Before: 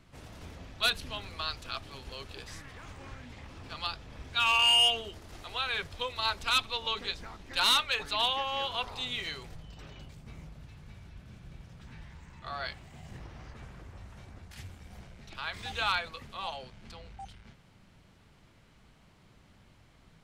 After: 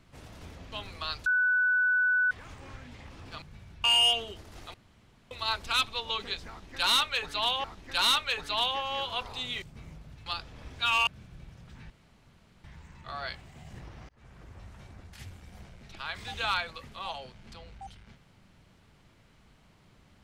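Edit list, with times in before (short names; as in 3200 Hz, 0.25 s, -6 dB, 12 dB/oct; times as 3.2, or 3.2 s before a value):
0.72–1.1 cut
1.64–2.69 bleep 1490 Hz -22 dBFS
3.8–4.61 swap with 10.77–11.19
5.51–6.08 room tone
7.26–8.41 loop, 2 plays
9.24–10.13 cut
12.02 insert room tone 0.74 s
13.47–14.06 fade in equal-power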